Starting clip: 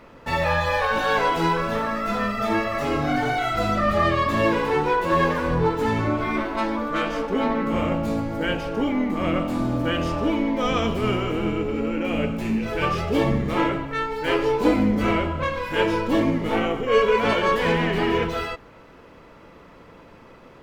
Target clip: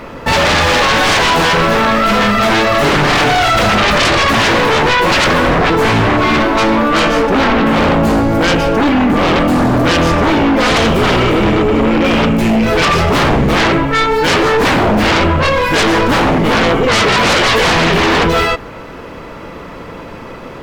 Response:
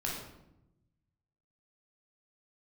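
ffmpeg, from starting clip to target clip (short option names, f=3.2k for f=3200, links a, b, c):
-filter_complex "[0:a]asettb=1/sr,asplit=3[a][b][c];[a]atrim=end=2.824[d];[b]atrim=start=2.82:end=3.24,asetpts=PTS-STARTPTS,afade=t=in:d=0.004:c=qsin,afade=t=out:st=0.416:d=0.004:c=qsin,aecho=1:1:6.8:0.67,atrim=end_sample=18522[e];[c]atrim=start=3.236[f];[d][e]acrossfade=d=0.004:c1=hsin:c2=qsin[g];[g][f]acrossfade=d=0.004:c1=qsin:c2=hsin,aeval=exprs='0.447*sin(PI/2*5.62*val(0)/0.447)':c=same,volume=-1dB"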